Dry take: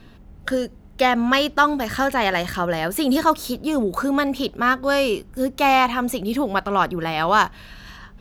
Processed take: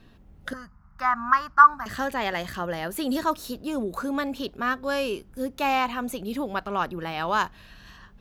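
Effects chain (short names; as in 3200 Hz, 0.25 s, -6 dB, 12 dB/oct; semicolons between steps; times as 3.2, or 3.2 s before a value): 0.53–1.86 EQ curve 160 Hz 0 dB, 450 Hz -26 dB, 1200 Hz +15 dB, 3400 Hz -21 dB, 5000 Hz -5 dB, 8600 Hz -14 dB, 14000 Hz -10 dB; gain -7.5 dB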